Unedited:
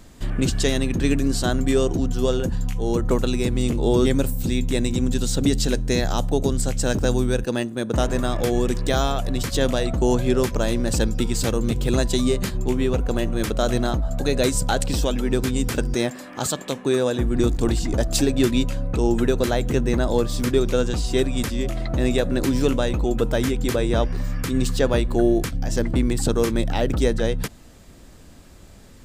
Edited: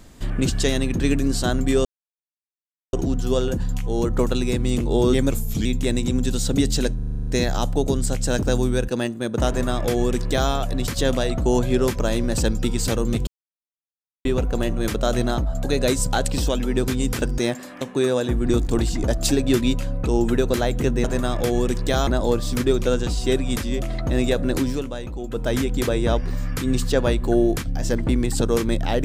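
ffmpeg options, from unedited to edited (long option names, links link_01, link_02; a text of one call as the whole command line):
ffmpeg -i in.wav -filter_complex "[0:a]asplit=19[link_01][link_02][link_03][link_04][link_05][link_06][link_07][link_08][link_09][link_10][link_11][link_12][link_13][link_14][link_15][link_16][link_17][link_18][link_19];[link_01]atrim=end=1.85,asetpts=PTS-STARTPTS,afade=type=out:start_time=1.846:duration=0.004:curve=hsin,apad=pad_dur=1.08[link_20];[link_02]atrim=start=1.85:end=4.234,asetpts=PTS-STARTPTS,afade=type=in:duration=0.004:curve=hsin[link_21];[link_03]atrim=start=4.23:end=4.53,asetpts=PTS-STARTPTS,asetrate=38808,aresample=44100,atrim=end_sample=15034,asetpts=PTS-STARTPTS[link_22];[link_04]atrim=start=4.526:end=5.872[link_23];[link_05]atrim=start=5.828:end=5.872[link_24];[link_06]atrim=start=5.828:end=5.872[link_25];[link_07]atrim=start=5.828:end=5.872[link_26];[link_08]atrim=start=5.828:end=5.872[link_27];[link_09]atrim=start=5.828:end=5.872[link_28];[link_10]atrim=start=5.828:end=5.872[link_29];[link_11]atrim=start=5.828:end=5.872[link_30];[link_12]atrim=start=5.828:end=11.83,asetpts=PTS-STARTPTS,afade=type=out:start_time=5.998:duration=0.004:curve=hsin[link_31];[link_13]atrim=start=11.83:end=12.81,asetpts=PTS-STARTPTS,volume=0[link_32];[link_14]atrim=start=12.81:end=16.372,asetpts=PTS-STARTPTS,afade=type=in:duration=0.004:curve=hsin[link_33];[link_15]atrim=start=16.708:end=19.942[link_34];[link_16]atrim=start=8.038:end=9.072[link_35];[link_17]atrim=start=19.938:end=22.7,asetpts=PTS-STARTPTS,afade=type=out:start_time=2.512:duration=0.25:silence=0.354813[link_36];[link_18]atrim=start=22.7:end=23.16,asetpts=PTS-STARTPTS,volume=-9dB[link_37];[link_19]atrim=start=23.16,asetpts=PTS-STARTPTS,afade=type=in:duration=0.25:silence=0.354813[link_38];[link_20][link_21]concat=n=2:v=0:a=1[link_39];[link_39][link_22]acrossfade=duration=0.004:curve1=hsin:curve2=hsin[link_40];[link_40][link_23]acrossfade=duration=0.004:curve1=hsin:curve2=hsin[link_41];[link_41][link_24]acrossfade=duration=0.004:curve1=hsin:curve2=hsin[link_42];[link_42][link_25]acrossfade=duration=0.004:curve1=hsin:curve2=hsin[link_43];[link_43][link_26]acrossfade=duration=0.004:curve1=hsin:curve2=hsin[link_44];[link_44][link_27]acrossfade=duration=0.004:curve1=hsin:curve2=hsin[link_45];[link_45][link_28]acrossfade=duration=0.004:curve1=hsin:curve2=hsin[link_46];[link_46][link_29]acrossfade=duration=0.004:curve1=hsin:curve2=hsin[link_47];[link_47][link_30]acrossfade=duration=0.004:curve1=hsin:curve2=hsin[link_48];[link_31][link_32][link_33]concat=n=3:v=0:a=1[link_49];[link_48][link_49]acrossfade=duration=0.004:curve1=hsin:curve2=hsin[link_50];[link_50][link_34]acrossfade=duration=0.004:curve1=hsin:curve2=hsin[link_51];[link_51][link_35]acrossfade=duration=0.004:curve1=hsin:curve2=hsin[link_52];[link_36][link_37][link_38]concat=n=3:v=0:a=1[link_53];[link_52][link_53]acrossfade=duration=0.004:curve1=hsin:curve2=hsin" out.wav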